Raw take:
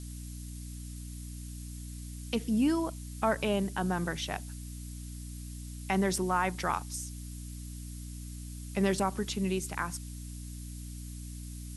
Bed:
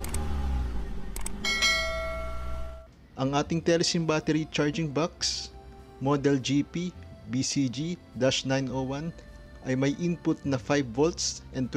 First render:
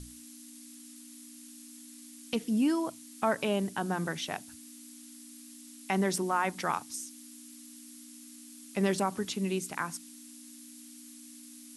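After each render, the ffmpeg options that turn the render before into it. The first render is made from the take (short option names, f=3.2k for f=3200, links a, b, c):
-af "bandreject=f=60:t=h:w=6,bandreject=f=120:t=h:w=6,bandreject=f=180:t=h:w=6"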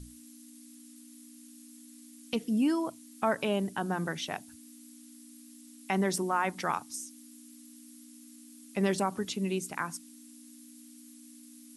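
-af "afftdn=nr=6:nf=-50"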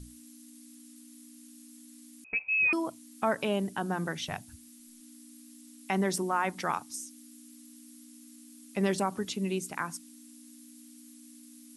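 -filter_complex "[0:a]asettb=1/sr,asplit=3[a][b][c];[a]atrim=end=2.244[d];[b]atrim=start=2.24:end=2.73,asetpts=PTS-STARTPTS,afade=t=in:d=0.004:c=qsin,afade=t=out:st=0.486:d=0.004:c=qsin,lowpass=f=2.4k:t=q:w=0.5098,lowpass=f=2.4k:t=q:w=0.6013,lowpass=f=2.4k:t=q:w=0.9,lowpass=f=2.4k:t=q:w=2.563,afreqshift=-2800[e];[c]atrim=start=2.726[f];[d][e]acrossfade=d=0.004:c1=hsin:c2=qsin[g];[g][f]acrossfade=d=0.004:c1=qsin:c2=hsin,asplit=3[h][i][j];[h]afade=t=out:st=4.18:d=0.02[k];[i]asubboost=boost=11.5:cutoff=95,afade=t=in:st=4.18:d=0.02,afade=t=out:st=5:d=0.02[l];[j]afade=t=in:st=5:d=0.02[m];[k][l][m]amix=inputs=3:normalize=0,asettb=1/sr,asplit=3[n][o][p];[n]atrim=end=6.924[q];[o]atrim=start=6.92:end=7.44,asetpts=PTS-STARTPTS,afade=t=in:d=0.004:c=qsin,afade=t=out:st=0.516:d=0.004:c=qsin,bandreject=f=980:w=8.8[r];[p]atrim=start=7.436[s];[q][r]acrossfade=d=0.004:c1=hsin:c2=qsin[t];[t][s]acrossfade=d=0.004:c1=qsin:c2=hsin"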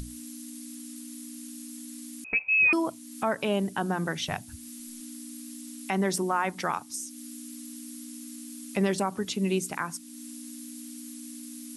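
-filter_complex "[0:a]asplit=2[a][b];[b]acompressor=mode=upward:threshold=-33dB:ratio=2.5,volume=-2dB[c];[a][c]amix=inputs=2:normalize=0,alimiter=limit=-15.5dB:level=0:latency=1:release=477"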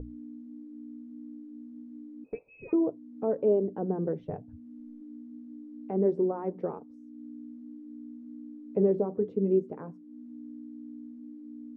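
-af "flanger=delay=2.6:depth=9.5:regen=-54:speed=0.28:shape=triangular,lowpass=f=460:t=q:w=4.9"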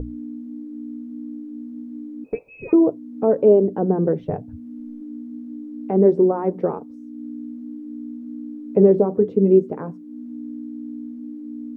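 -af "volume=11dB"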